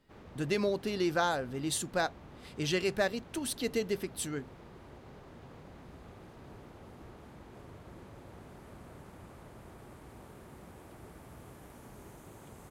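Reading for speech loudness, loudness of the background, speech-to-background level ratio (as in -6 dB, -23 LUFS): -33.0 LUFS, -52.0 LUFS, 19.0 dB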